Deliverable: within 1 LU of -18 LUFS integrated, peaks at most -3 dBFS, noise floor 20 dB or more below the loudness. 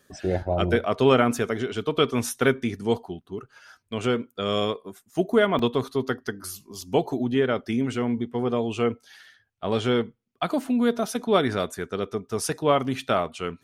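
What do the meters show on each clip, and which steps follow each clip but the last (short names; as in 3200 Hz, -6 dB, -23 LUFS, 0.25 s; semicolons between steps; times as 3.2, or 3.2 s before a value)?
dropouts 2; longest dropout 2.5 ms; loudness -25.0 LUFS; peak -6.0 dBFS; loudness target -18.0 LUFS
-> interpolate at 5.59/6.81, 2.5 ms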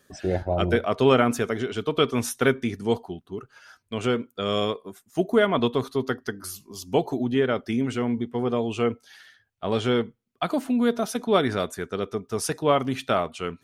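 dropouts 0; loudness -25.0 LUFS; peak -6.0 dBFS; loudness target -18.0 LUFS
-> gain +7 dB; limiter -3 dBFS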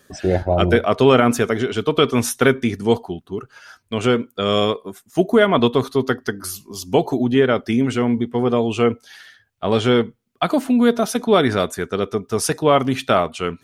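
loudness -18.5 LUFS; peak -3.0 dBFS; noise floor -60 dBFS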